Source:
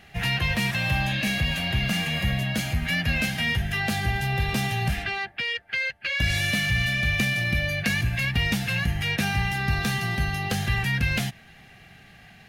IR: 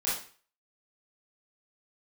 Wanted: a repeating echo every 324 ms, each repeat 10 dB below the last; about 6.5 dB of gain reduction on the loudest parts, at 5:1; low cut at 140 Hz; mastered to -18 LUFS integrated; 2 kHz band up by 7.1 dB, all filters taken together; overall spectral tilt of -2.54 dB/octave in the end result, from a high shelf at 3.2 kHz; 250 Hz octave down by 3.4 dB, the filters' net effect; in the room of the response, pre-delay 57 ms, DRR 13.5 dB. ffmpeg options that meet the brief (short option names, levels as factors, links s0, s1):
-filter_complex "[0:a]highpass=140,equalizer=f=250:t=o:g=-3.5,equalizer=f=2000:t=o:g=7,highshelf=f=3200:g=4.5,acompressor=threshold=0.0708:ratio=5,aecho=1:1:324|648|972|1296:0.316|0.101|0.0324|0.0104,asplit=2[s0][s1];[1:a]atrim=start_sample=2205,adelay=57[s2];[s1][s2]afir=irnorm=-1:irlink=0,volume=0.0891[s3];[s0][s3]amix=inputs=2:normalize=0,volume=2"